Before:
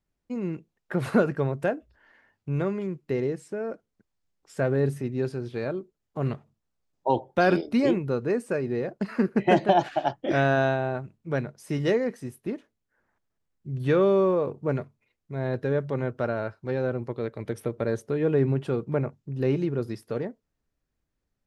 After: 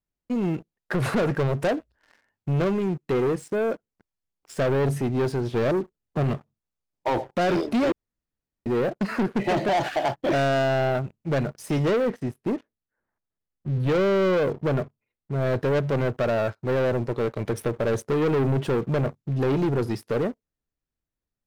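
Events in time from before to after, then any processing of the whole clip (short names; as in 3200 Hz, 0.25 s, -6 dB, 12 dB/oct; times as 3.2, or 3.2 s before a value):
5.54–6.24 low shelf 470 Hz +5.5 dB
7.92–8.66 room tone
11.85–15.47 LPF 2300 Hz 6 dB/oct
whole clip: dynamic EQ 620 Hz, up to +3 dB, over -34 dBFS, Q 1.9; limiter -15.5 dBFS; sample leveller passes 3; gain -2.5 dB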